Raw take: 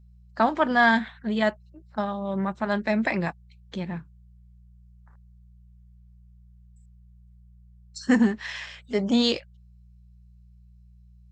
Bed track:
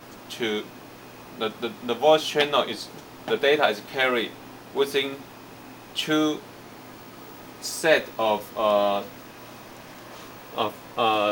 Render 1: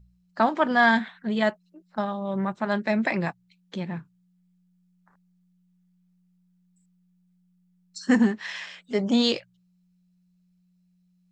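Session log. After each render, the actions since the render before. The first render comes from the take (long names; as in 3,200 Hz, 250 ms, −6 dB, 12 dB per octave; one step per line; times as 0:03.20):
hum removal 60 Hz, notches 2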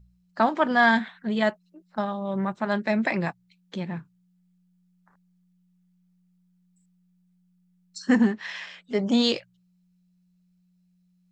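0:08.02–0:09.02: high-frequency loss of the air 57 metres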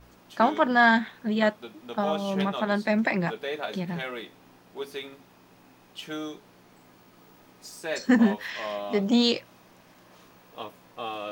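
mix in bed track −12.5 dB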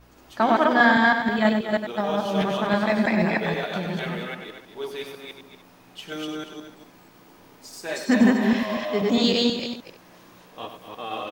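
delay that plays each chunk backwards 161 ms, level 0 dB
multi-tap delay 97/238/306 ms −8.5/−10.5/−18 dB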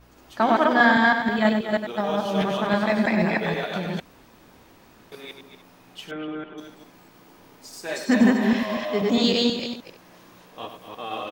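0:04.00–0:05.12: fill with room tone
0:06.11–0:06.58: low-pass filter 2,400 Hz 24 dB per octave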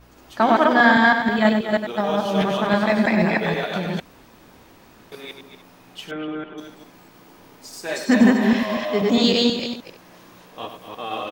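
level +3 dB
brickwall limiter −3 dBFS, peak gain reduction 2 dB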